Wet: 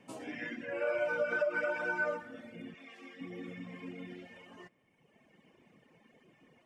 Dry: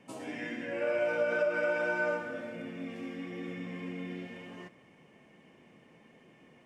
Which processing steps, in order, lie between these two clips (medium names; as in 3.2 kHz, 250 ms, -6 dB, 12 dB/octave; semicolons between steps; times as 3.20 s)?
2.74–3.21 s: frequency weighting A; reverb removal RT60 1.7 s; dynamic bell 1.3 kHz, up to +4 dB, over -47 dBFS, Q 1.1; trim -1.5 dB